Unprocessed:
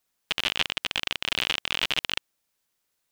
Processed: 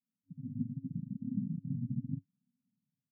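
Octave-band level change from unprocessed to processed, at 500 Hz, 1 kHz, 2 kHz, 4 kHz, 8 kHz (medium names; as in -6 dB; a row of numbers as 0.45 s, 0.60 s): under -35 dB, under -40 dB, under -40 dB, under -40 dB, under -40 dB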